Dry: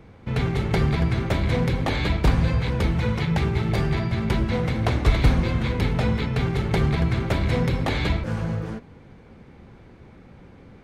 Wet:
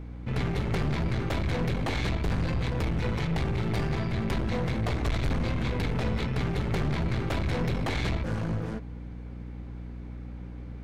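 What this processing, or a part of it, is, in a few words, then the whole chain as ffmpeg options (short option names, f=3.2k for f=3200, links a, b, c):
valve amplifier with mains hum: -af "aeval=exprs='(tanh(17.8*val(0)+0.5)-tanh(0.5))/17.8':c=same,aeval=exprs='val(0)+0.0126*(sin(2*PI*60*n/s)+sin(2*PI*2*60*n/s)/2+sin(2*PI*3*60*n/s)/3+sin(2*PI*4*60*n/s)/4+sin(2*PI*5*60*n/s)/5)':c=same"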